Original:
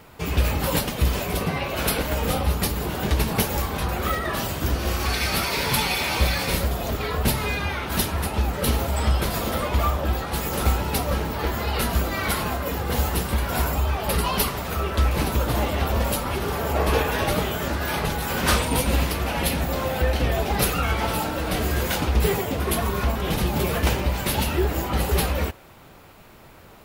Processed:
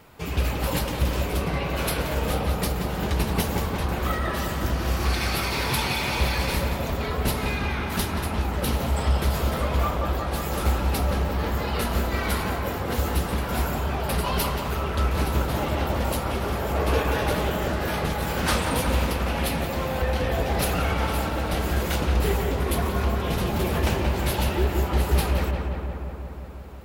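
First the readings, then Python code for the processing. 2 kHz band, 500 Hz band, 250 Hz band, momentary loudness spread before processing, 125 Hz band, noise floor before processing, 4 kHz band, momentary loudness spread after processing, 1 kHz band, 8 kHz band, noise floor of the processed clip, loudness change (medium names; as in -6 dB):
-2.0 dB, -1.0 dB, -1.0 dB, 4 LU, -0.5 dB, -47 dBFS, -3.0 dB, 4 LU, -1.5 dB, -4.5 dB, -30 dBFS, -1.5 dB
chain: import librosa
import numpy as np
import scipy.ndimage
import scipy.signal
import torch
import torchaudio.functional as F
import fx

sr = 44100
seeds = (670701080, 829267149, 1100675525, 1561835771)

y = fx.echo_filtered(x, sr, ms=178, feedback_pct=77, hz=2700.0, wet_db=-4.5)
y = fx.doppler_dist(y, sr, depth_ms=0.2)
y = F.gain(torch.from_numpy(y), -3.5).numpy()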